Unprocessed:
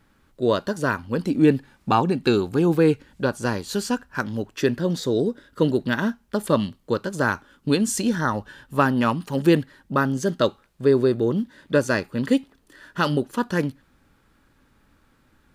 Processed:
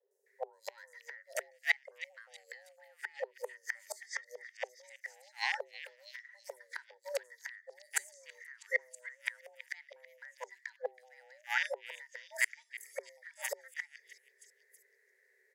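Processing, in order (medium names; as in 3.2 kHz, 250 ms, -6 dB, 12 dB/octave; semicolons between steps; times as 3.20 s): rattle on loud lows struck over -28 dBFS, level -26 dBFS; spectral noise reduction 21 dB; FFT filter 160 Hz 0 dB, 280 Hz -18 dB, 420 Hz -13 dB, 610 Hz -11 dB, 870 Hz -20 dB, 1.5 kHz +8 dB, 2.5 kHz -21 dB, 6.1 kHz -2 dB, 8.7 kHz -6 dB; three bands offset in time lows, highs, mids 110/260 ms, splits 580/5500 Hz; compression 10:1, threshold -31 dBFS, peak gain reduction 16 dB; inverted gate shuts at -30 dBFS, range -33 dB; tilt shelf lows -7 dB, about 680 Hz; on a send: repeats whose band climbs or falls 324 ms, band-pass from 2.5 kHz, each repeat 0.7 oct, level -10 dB; on the sum: frequency shift +380 Hz; trim +11 dB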